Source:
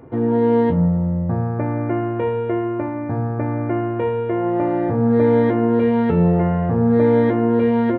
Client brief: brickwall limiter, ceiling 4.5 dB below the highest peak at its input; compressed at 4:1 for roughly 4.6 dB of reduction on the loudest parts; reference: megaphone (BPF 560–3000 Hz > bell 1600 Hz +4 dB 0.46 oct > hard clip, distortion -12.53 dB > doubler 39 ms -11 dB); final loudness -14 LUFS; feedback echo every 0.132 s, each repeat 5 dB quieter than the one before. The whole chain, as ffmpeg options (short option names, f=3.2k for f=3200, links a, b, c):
-filter_complex "[0:a]acompressor=threshold=-17dB:ratio=4,alimiter=limit=-14.5dB:level=0:latency=1,highpass=560,lowpass=3k,equalizer=f=1.6k:t=o:w=0.46:g=4,aecho=1:1:132|264|396|528|660|792|924:0.562|0.315|0.176|0.0988|0.0553|0.031|0.0173,asoftclip=type=hard:threshold=-26dB,asplit=2[a][b];[b]adelay=39,volume=-11dB[c];[a][c]amix=inputs=2:normalize=0,volume=16.5dB"